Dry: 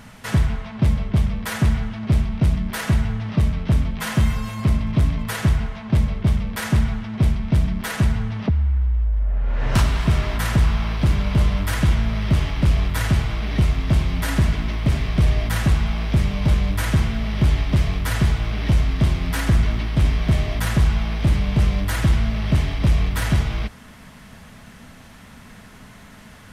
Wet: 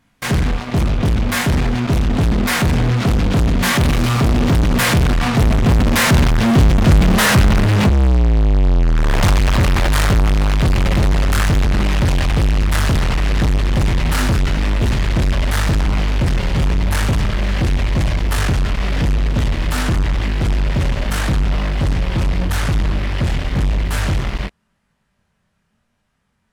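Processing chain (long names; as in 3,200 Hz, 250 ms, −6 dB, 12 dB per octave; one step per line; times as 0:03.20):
source passing by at 0:07.02, 33 m/s, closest 30 metres
chorus effect 0.88 Hz, delay 19.5 ms, depth 4.9 ms
in parallel at −5 dB: fuzz pedal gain 48 dB, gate −54 dBFS
on the sum: highs frequency-modulated by the lows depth 0.5 ms
level +4.5 dB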